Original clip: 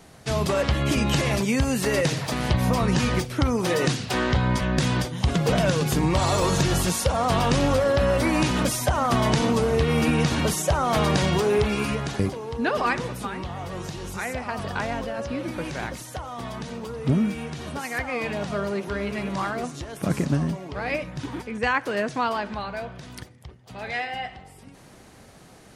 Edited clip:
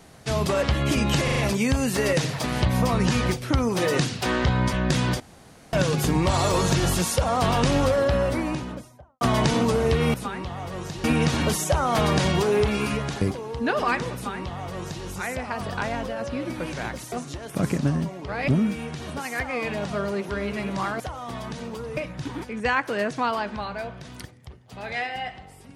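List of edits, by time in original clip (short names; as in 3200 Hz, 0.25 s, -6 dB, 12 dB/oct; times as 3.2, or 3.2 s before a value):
1.24 stutter 0.04 s, 4 plays
5.08–5.61 room tone
7.75–9.09 studio fade out
13.13–14.03 copy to 10.02
16.1–17.07 swap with 19.59–20.95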